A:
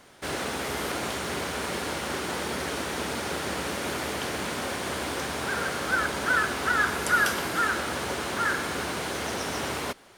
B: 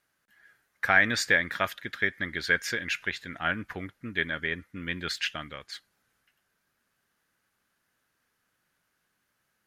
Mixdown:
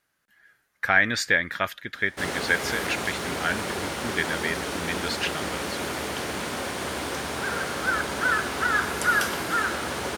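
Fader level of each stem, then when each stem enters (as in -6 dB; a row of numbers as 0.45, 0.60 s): +0.5, +1.5 dB; 1.95, 0.00 s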